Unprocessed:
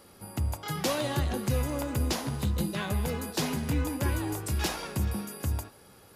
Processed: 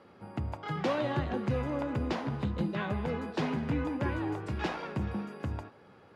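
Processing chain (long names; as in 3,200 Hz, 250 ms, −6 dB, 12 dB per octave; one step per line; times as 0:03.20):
band-pass filter 110–2,300 Hz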